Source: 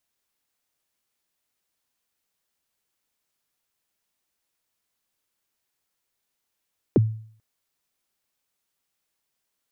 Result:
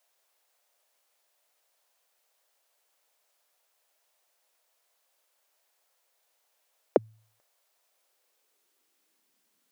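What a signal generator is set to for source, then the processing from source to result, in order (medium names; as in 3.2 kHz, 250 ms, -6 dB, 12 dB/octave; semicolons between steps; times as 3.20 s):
kick drum length 0.44 s, from 490 Hz, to 110 Hz, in 26 ms, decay 0.54 s, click off, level -11 dB
in parallel at -1 dB: compression, threshold -29 dBFS; on the sum: high-pass sweep 590 Hz -> 210 Hz, 7.92–9.54 s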